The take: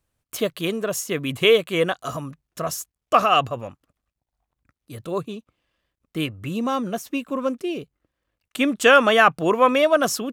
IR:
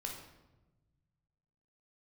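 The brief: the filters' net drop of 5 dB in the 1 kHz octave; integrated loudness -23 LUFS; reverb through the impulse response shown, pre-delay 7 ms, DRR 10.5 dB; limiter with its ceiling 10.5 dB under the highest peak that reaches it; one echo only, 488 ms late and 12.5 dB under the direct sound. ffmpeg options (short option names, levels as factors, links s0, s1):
-filter_complex "[0:a]equalizer=f=1000:t=o:g=-7,alimiter=limit=0.188:level=0:latency=1,aecho=1:1:488:0.237,asplit=2[s0][s1];[1:a]atrim=start_sample=2205,adelay=7[s2];[s1][s2]afir=irnorm=-1:irlink=0,volume=0.316[s3];[s0][s3]amix=inputs=2:normalize=0,volume=1.41"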